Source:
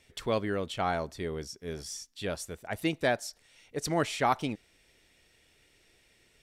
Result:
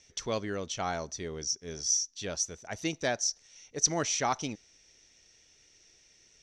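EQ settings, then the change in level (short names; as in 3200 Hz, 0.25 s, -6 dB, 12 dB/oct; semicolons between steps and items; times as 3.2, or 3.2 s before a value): synth low-pass 6000 Hz, resonance Q 13; -3.5 dB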